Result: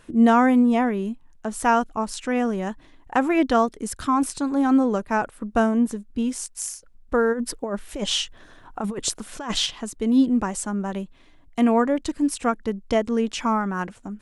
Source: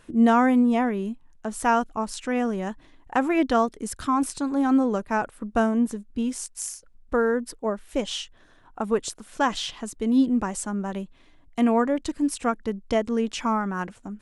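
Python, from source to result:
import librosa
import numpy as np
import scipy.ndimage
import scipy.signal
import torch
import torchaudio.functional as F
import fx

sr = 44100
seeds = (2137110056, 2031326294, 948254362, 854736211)

y = fx.over_compress(x, sr, threshold_db=-30.0, ratio=-1.0, at=(7.32, 9.65), fade=0.02)
y = y * 10.0 ** (2.0 / 20.0)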